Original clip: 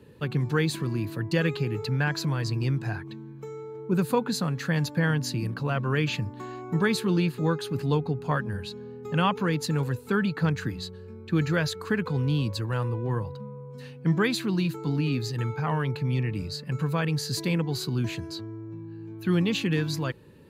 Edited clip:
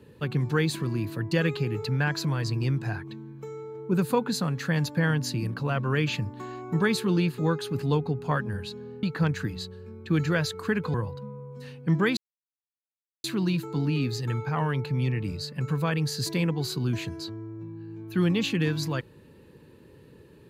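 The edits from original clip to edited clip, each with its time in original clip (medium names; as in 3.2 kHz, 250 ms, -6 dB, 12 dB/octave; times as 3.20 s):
9.03–10.25 s: delete
12.16–13.12 s: delete
14.35 s: insert silence 1.07 s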